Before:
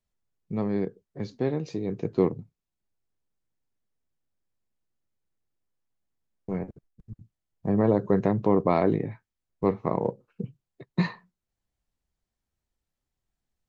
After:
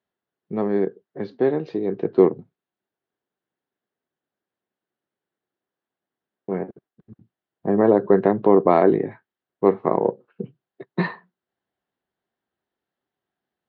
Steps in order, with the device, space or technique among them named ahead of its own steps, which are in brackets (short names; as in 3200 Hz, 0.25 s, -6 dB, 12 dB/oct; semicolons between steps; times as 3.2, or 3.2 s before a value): kitchen radio (speaker cabinet 220–3500 Hz, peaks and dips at 380 Hz +5 dB, 720 Hz +3 dB, 1600 Hz +4 dB, 2400 Hz -6 dB); gain +5.5 dB